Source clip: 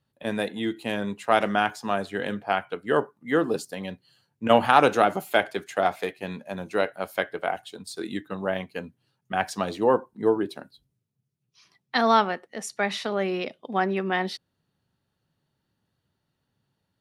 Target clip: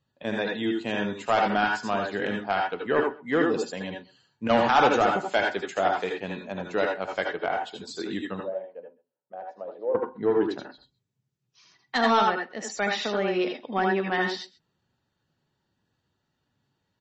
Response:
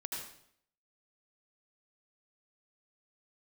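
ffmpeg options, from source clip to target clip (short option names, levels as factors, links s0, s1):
-filter_complex "[0:a]asoftclip=type=tanh:threshold=0.251,asettb=1/sr,asplit=3[s0][s1][s2];[s0]atrim=end=8.404[s3];[s1]atrim=start=8.4:end=9.95,asetpts=PTS-STARTPTS,afade=t=in:d=0.004:c=qsin,afade=t=out:st=1.546:d=0.004:c=qsin,bandpass=f=550:t=q:w=6.6:csg=0[s4];[s2]atrim=start=9.946[s5];[s3][s4]acrossfade=d=0.004:c1=hsin:c2=qsin[s6];[s6][s5]acrossfade=d=0.004:c1=qsin:c2=hsin,aecho=1:1:130:0.0794[s7];[1:a]atrim=start_sample=2205,afade=t=out:st=0.14:d=0.01,atrim=end_sample=6615[s8];[s7][s8]afir=irnorm=-1:irlink=0,volume=1.5" -ar 32000 -c:a libmp3lame -b:a 32k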